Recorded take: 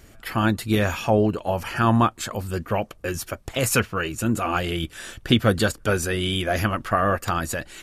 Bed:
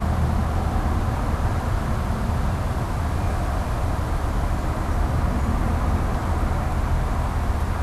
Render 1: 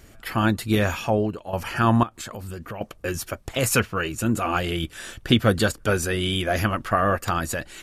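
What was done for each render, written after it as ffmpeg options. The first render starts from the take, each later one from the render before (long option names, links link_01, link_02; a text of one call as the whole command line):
ffmpeg -i in.wav -filter_complex "[0:a]asettb=1/sr,asplit=3[link_01][link_02][link_03];[link_01]atrim=end=2.034[link_04];[link_02]atrim=start=2.03:end=2.81,asetpts=PTS-STARTPTS,afade=type=in:duration=0.004:curve=qsin,afade=type=out:start_time=0.776:duration=0.004:curve=qsin,acompressor=threshold=-31dB:ratio=6:attack=3.2:release=140:knee=1:detection=peak[link_05];[link_03]atrim=start=2.806[link_06];[link_04][link_05]acrossfade=duration=0.004:curve1=hsin:curve2=qsin[link_07];[link_07][link_06]acrossfade=duration=0.004:curve1=qsin:curve2=hsin,asplit=2[link_08][link_09];[link_08]atrim=end=1.53,asetpts=PTS-STARTPTS,afade=type=out:start_time=0.9:duration=0.63:silence=0.298538[link_10];[link_09]atrim=start=1.53,asetpts=PTS-STARTPTS,afade=type=in:duration=0.004:curve=hsin:silence=0.298538[link_11];[link_10][link_11]concat=n=2:v=0:a=1" out.wav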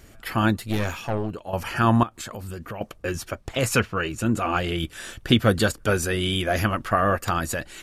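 ffmpeg -i in.wav -filter_complex "[0:a]asettb=1/sr,asplit=3[link_01][link_02][link_03];[link_01]atrim=end=0.584[link_04];[link_02]atrim=start=0.58:end=1.31,asetpts=PTS-STARTPTS,afade=type=in:duration=0.004:curve=qsin,afade=type=out:start_time=0.726:duration=0.004:curve=qsin,aeval=exprs='(tanh(8.91*val(0)+0.75)-tanh(0.75))/8.91':channel_layout=same[link_05];[link_03]atrim=start=1.306[link_06];[link_04][link_05]acrossfade=duration=0.004:curve1=hsin:curve2=qsin[link_07];[link_07][link_06]acrossfade=duration=0.004:curve1=qsin:curve2=hsin,asettb=1/sr,asplit=3[link_08][link_09][link_10];[link_08]atrim=end=2.984[link_11];[link_09]atrim=start=2.98:end=4.79,asetpts=PTS-STARTPTS,afade=type=in:duration=0.004:curve=qsin,afade=type=out:start_time=1.806:duration=0.004:curve=qsin,highshelf=frequency=10000:gain=-11[link_12];[link_10]atrim=start=4.786[link_13];[link_11][link_12]acrossfade=duration=0.004:curve1=hsin:curve2=qsin[link_14];[link_14][link_13]acrossfade=duration=0.004:curve1=qsin:curve2=hsin" out.wav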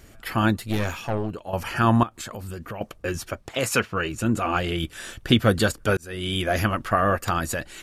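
ffmpeg -i in.wav -filter_complex "[0:a]asettb=1/sr,asplit=3[link_01][link_02][link_03];[link_01]atrim=end=3.474[link_04];[link_02]atrim=start=3.47:end=3.92,asetpts=PTS-STARTPTS,afade=type=in:duration=0.004:curve=qsin,afade=type=out:start_time=0.446:duration=0.004:curve=qsin,highpass=frequency=230:poles=1[link_05];[link_03]atrim=start=3.916[link_06];[link_04][link_05]acrossfade=duration=0.004:curve1=hsin:curve2=qsin[link_07];[link_07][link_06]acrossfade=duration=0.004:curve1=qsin:curve2=hsin,asplit=2[link_08][link_09];[link_08]atrim=end=5.97,asetpts=PTS-STARTPTS,afade=type=out:start_time=5.966:duration=0.004:curve=hsin[link_10];[link_09]atrim=start=5.97,asetpts=PTS-STARTPTS,afade=type=in:duration=0.44[link_11];[link_10][link_11]concat=n=2:v=0:a=1" out.wav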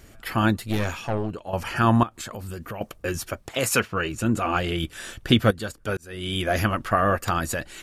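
ffmpeg -i in.wav -filter_complex "[0:a]asettb=1/sr,asplit=3[link_01][link_02][link_03];[link_01]atrim=end=0.854[link_04];[link_02]atrim=start=0.85:end=1.76,asetpts=PTS-STARTPTS,afade=type=in:duration=0.004:curve=qsin,afade=type=out:start_time=0.906:duration=0.004:curve=qsin,lowpass=12000[link_05];[link_03]atrim=start=1.756[link_06];[link_04][link_05]acrossfade=duration=0.004:curve1=hsin:curve2=qsin[link_07];[link_07][link_06]acrossfade=duration=0.004:curve1=qsin:curve2=hsin,asettb=1/sr,asplit=3[link_08][link_09][link_10];[link_08]atrim=end=2.514[link_11];[link_09]atrim=start=2.51:end=3.88,asetpts=PTS-STARTPTS,afade=type=in:duration=0.004:curve=qsin,afade=type=out:start_time=1.366:duration=0.004:curve=qsin,highshelf=frequency=9200:gain=7[link_12];[link_10]atrim=start=3.876[link_13];[link_11][link_12]acrossfade=duration=0.004:curve1=hsin:curve2=qsin[link_14];[link_14][link_13]acrossfade=duration=0.004:curve1=qsin:curve2=hsin,asplit=2[link_15][link_16];[link_15]atrim=end=5.51,asetpts=PTS-STARTPTS,afade=type=out:start_time=5.506:duration=0.004:curve=hsin:silence=0.188365[link_17];[link_16]atrim=start=5.51,asetpts=PTS-STARTPTS,afade=type=in:duration=0.99:silence=0.188365[link_18];[link_17][link_18]concat=n=2:v=0:a=1" out.wav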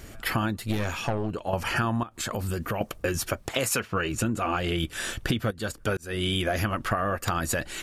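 ffmpeg -i in.wav -filter_complex "[0:a]asplit=2[link_01][link_02];[link_02]alimiter=limit=-13dB:level=0:latency=1:release=99,volume=-1.5dB[link_03];[link_01][link_03]amix=inputs=2:normalize=0,acompressor=threshold=-23dB:ratio=10" out.wav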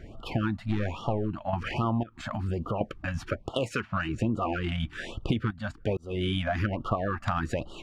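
ffmpeg -i in.wav -af "adynamicsmooth=sensitivity=0.5:basefreq=2400,afftfilt=real='re*(1-between(b*sr/1024,380*pow(2000/380,0.5+0.5*sin(2*PI*1.2*pts/sr))/1.41,380*pow(2000/380,0.5+0.5*sin(2*PI*1.2*pts/sr))*1.41))':imag='im*(1-between(b*sr/1024,380*pow(2000/380,0.5+0.5*sin(2*PI*1.2*pts/sr))/1.41,380*pow(2000/380,0.5+0.5*sin(2*PI*1.2*pts/sr))*1.41))':win_size=1024:overlap=0.75" out.wav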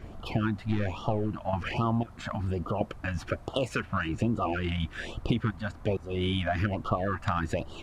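ffmpeg -i in.wav -i bed.wav -filter_complex "[1:a]volume=-26.5dB[link_01];[0:a][link_01]amix=inputs=2:normalize=0" out.wav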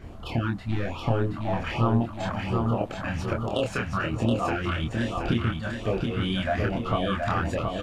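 ffmpeg -i in.wav -filter_complex "[0:a]asplit=2[link_01][link_02];[link_02]adelay=26,volume=-3dB[link_03];[link_01][link_03]amix=inputs=2:normalize=0,aecho=1:1:723|1446|2169|2892|3615:0.631|0.271|0.117|0.0502|0.0216" out.wav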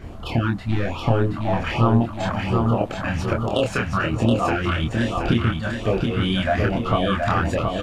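ffmpeg -i in.wav -af "volume=5.5dB" out.wav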